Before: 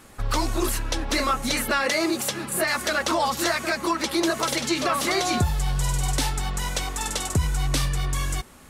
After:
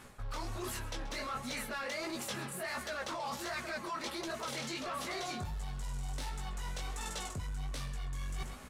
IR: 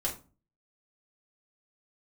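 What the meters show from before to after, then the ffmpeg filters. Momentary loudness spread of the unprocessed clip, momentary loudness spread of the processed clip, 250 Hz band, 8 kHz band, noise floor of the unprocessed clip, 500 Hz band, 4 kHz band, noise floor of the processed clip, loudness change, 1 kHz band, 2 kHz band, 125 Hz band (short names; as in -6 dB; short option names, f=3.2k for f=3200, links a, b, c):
5 LU, 4 LU, -17.0 dB, -16.5 dB, -48 dBFS, -15.0 dB, -15.0 dB, -45 dBFS, -15.0 dB, -14.5 dB, -14.0 dB, -15.0 dB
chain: -af "highshelf=f=6.1k:g=-5.5,flanger=delay=15.5:depth=7.1:speed=1.4,asoftclip=type=tanh:threshold=-22dB,equalizer=f=310:w=5.7:g=-8.5,aecho=1:1:132:0.141,areverse,acompressor=threshold=-39dB:ratio=12,areverse,volume=2.5dB"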